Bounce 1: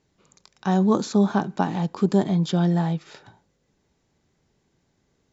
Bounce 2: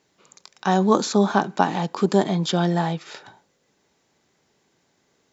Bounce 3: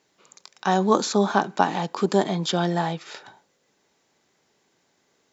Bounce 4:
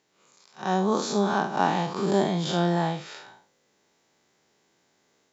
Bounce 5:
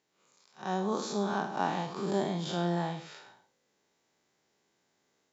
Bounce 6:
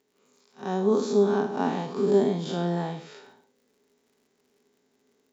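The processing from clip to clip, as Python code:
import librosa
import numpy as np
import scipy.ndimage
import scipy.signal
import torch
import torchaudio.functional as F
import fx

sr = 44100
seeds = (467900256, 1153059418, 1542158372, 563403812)

y1 = fx.highpass(x, sr, hz=470.0, slope=6)
y1 = y1 * 10.0 ** (7.0 / 20.0)
y2 = fx.low_shelf(y1, sr, hz=190.0, db=-7.5)
y3 = fx.spec_blur(y2, sr, span_ms=114.0)
y3 = fx.rider(y3, sr, range_db=10, speed_s=0.5)
y3 = y3 * 10.0 ** (1.0 / 20.0)
y4 = y3 + 10.0 ** (-14.0 / 20.0) * np.pad(y3, (int(104 * sr / 1000.0), 0))[:len(y3)]
y4 = y4 * 10.0 ** (-7.5 / 20.0)
y5 = fx.small_body(y4, sr, hz=(250.0, 410.0), ring_ms=75, db=16)
y5 = fx.dmg_crackle(y5, sr, seeds[0], per_s=96.0, level_db=-56.0)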